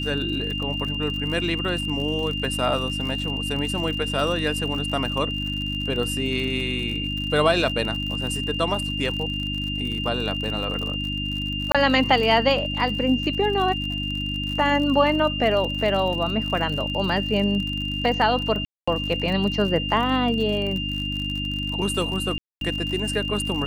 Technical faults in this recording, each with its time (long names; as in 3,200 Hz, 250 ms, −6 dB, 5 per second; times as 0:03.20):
surface crackle 58 per second −29 dBFS
mains hum 50 Hz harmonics 6 −30 dBFS
whistle 2,800 Hz −28 dBFS
0:11.72–0:11.75: drop-out 26 ms
0:18.65–0:18.88: drop-out 225 ms
0:22.38–0:22.61: drop-out 232 ms